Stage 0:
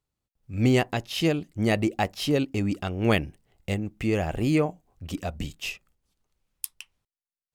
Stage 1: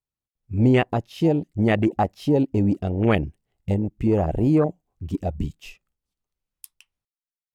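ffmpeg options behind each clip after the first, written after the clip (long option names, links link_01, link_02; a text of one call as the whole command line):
ffmpeg -i in.wav -filter_complex "[0:a]afwtdn=0.0398,asplit=2[link_01][link_02];[link_02]alimiter=limit=-19.5dB:level=0:latency=1:release=84,volume=1dB[link_03];[link_01][link_03]amix=inputs=2:normalize=0" out.wav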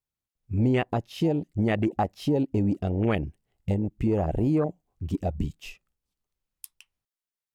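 ffmpeg -i in.wav -af "acompressor=threshold=-24dB:ratio=2" out.wav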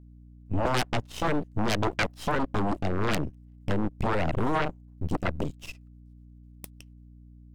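ffmpeg -i in.wav -af "aeval=exprs='max(val(0),0)':channel_layout=same,aeval=exprs='0.224*(cos(1*acos(clip(val(0)/0.224,-1,1)))-cos(1*PI/2))+0.0562*(cos(3*acos(clip(val(0)/0.224,-1,1)))-cos(3*PI/2))+0.0282*(cos(7*acos(clip(val(0)/0.224,-1,1)))-cos(7*PI/2))+0.0447*(cos(8*acos(clip(val(0)/0.224,-1,1)))-cos(8*PI/2))':channel_layout=same,aeval=exprs='val(0)+0.00251*(sin(2*PI*60*n/s)+sin(2*PI*2*60*n/s)/2+sin(2*PI*3*60*n/s)/3+sin(2*PI*4*60*n/s)/4+sin(2*PI*5*60*n/s)/5)':channel_layout=same,volume=3.5dB" out.wav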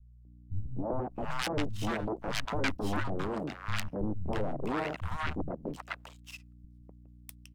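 ffmpeg -i in.wav -filter_complex "[0:a]acrossover=split=150|890[link_01][link_02][link_03];[link_02]adelay=250[link_04];[link_03]adelay=650[link_05];[link_01][link_04][link_05]amix=inputs=3:normalize=0,volume=-4dB" out.wav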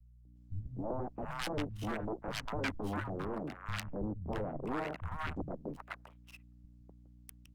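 ffmpeg -i in.wav -filter_complex "[0:a]acrossover=split=210|1500|2200[link_01][link_02][link_03][link_04];[link_04]aeval=exprs='sgn(val(0))*max(abs(val(0))-0.00316,0)':channel_layout=same[link_05];[link_01][link_02][link_03][link_05]amix=inputs=4:normalize=0,volume=-4dB" -ar 48000 -c:a libopus -b:a 48k out.opus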